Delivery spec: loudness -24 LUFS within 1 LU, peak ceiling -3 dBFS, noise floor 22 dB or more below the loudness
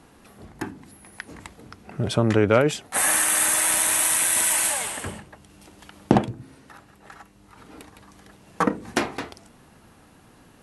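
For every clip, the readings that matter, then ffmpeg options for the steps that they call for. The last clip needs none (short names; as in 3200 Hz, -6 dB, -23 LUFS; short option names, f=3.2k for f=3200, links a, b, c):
loudness -20.5 LUFS; peak -4.0 dBFS; loudness target -24.0 LUFS
-> -af "volume=-3.5dB"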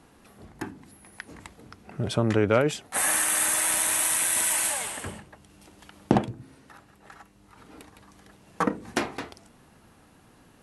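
loudness -24.0 LUFS; peak -7.5 dBFS; noise floor -57 dBFS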